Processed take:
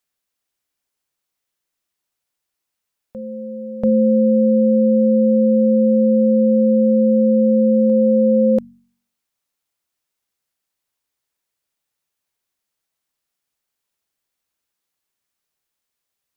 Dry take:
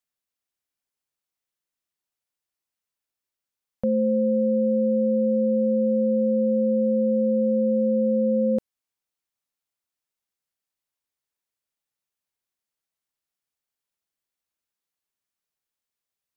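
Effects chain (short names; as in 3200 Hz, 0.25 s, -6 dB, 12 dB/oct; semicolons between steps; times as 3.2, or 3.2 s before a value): de-hum 47.18 Hz, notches 5; on a send: reverse echo 0.687 s -15.5 dB; on the sum: gain +7.5 dB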